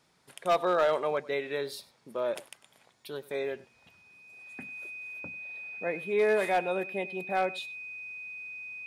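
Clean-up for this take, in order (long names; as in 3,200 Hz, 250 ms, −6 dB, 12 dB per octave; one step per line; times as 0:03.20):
clipped peaks rebuilt −19 dBFS
notch filter 2,500 Hz, Q 30
echo removal 98 ms −20 dB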